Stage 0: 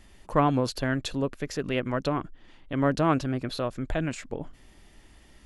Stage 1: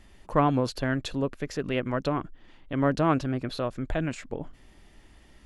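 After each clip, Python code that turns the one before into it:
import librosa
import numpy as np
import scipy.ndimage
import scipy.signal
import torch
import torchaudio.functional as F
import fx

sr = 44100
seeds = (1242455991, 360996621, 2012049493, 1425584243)

y = fx.high_shelf(x, sr, hz=4800.0, db=-5.0)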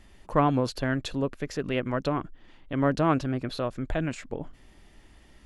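y = x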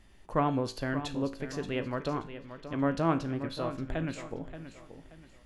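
y = fx.comb_fb(x, sr, f0_hz=55.0, decay_s=0.42, harmonics='all', damping=0.0, mix_pct=60)
y = fx.echo_feedback(y, sr, ms=579, feedback_pct=32, wet_db=-11.5)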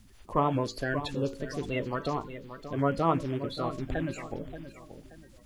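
y = fx.spec_quant(x, sr, step_db=30)
y = fx.quant_dither(y, sr, seeds[0], bits=12, dither='none')
y = y * 10.0 ** (2.0 / 20.0)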